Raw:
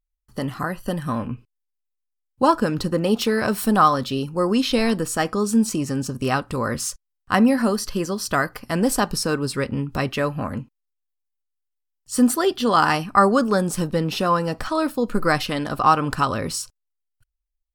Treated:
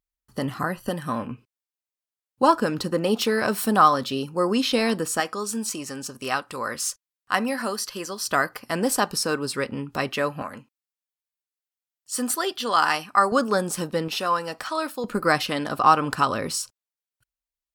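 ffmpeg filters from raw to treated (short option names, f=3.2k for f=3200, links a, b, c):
-af "asetnsamples=n=441:p=0,asendcmd='0.89 highpass f 270;5.2 highpass f 920;8.26 highpass f 370;10.42 highpass f 1000;13.32 highpass f 380;14.08 highpass f 920;15.04 highpass f 240',highpass=f=110:p=1"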